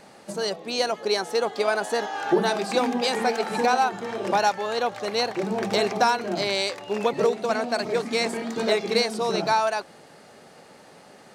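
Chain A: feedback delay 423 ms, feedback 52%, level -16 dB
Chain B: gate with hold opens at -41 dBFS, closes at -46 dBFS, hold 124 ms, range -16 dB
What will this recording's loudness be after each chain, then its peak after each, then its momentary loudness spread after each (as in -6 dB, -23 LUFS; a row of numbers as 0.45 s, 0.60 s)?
-24.5 LUFS, -24.5 LUFS; -7.5 dBFS, -7.5 dBFS; 7 LU, 5 LU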